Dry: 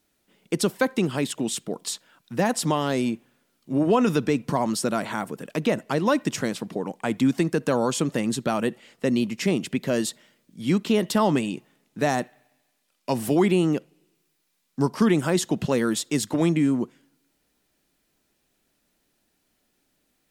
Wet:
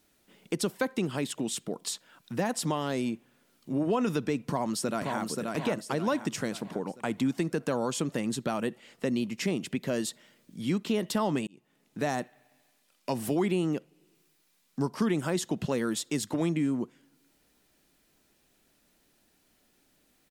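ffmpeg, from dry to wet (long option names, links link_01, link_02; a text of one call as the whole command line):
ffmpeg -i in.wav -filter_complex "[0:a]asplit=2[link_01][link_02];[link_02]afade=type=in:start_time=4.35:duration=0.01,afade=type=out:start_time=5.2:duration=0.01,aecho=0:1:530|1060|1590|2120|2650|3180:0.595662|0.268048|0.120622|0.0542797|0.0244259|0.0109916[link_03];[link_01][link_03]amix=inputs=2:normalize=0,asplit=2[link_04][link_05];[link_04]atrim=end=11.47,asetpts=PTS-STARTPTS,afade=type=out:start_time=11.466:duration=0.004:curve=hsin[link_06];[link_05]atrim=start=11.47,asetpts=PTS-STARTPTS,afade=type=in:duration=0.62[link_07];[link_06][link_07]concat=n=2:v=0:a=1,acompressor=threshold=-46dB:ratio=1.5,volume=3dB" out.wav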